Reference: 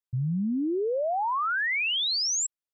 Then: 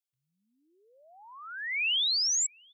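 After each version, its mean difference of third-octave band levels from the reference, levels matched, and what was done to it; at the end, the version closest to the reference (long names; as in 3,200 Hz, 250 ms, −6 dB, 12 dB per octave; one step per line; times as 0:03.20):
3.0 dB: high-pass with resonance 2,600 Hz, resonance Q 1.5
high-shelf EQ 4,500 Hz +8 dB
slap from a distant wall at 120 metres, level −25 dB
level −6.5 dB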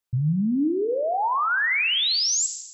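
5.5 dB: feedback delay network reverb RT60 0.99 s, low-frequency decay 0.7×, high-frequency decay 0.95×, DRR 9 dB
dynamic equaliser 550 Hz, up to −4 dB, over −36 dBFS, Q 1.1
in parallel at +3 dB: brickwall limiter −28.5 dBFS, peak gain reduction 10 dB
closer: first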